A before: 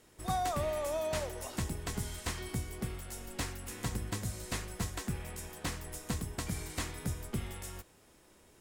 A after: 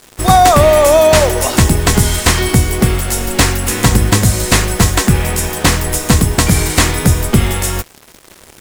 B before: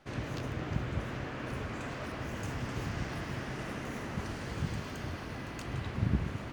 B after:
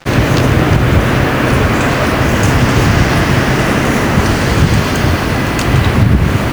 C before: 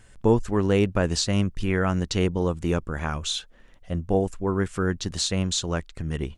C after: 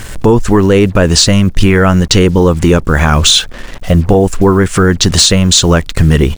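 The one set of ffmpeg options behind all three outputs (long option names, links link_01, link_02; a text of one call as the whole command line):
ffmpeg -i in.wav -af "acrusher=bits=8:mix=0:aa=0.5,acompressor=threshold=-29dB:ratio=5,apsyclip=28.5dB,volume=-1.5dB" out.wav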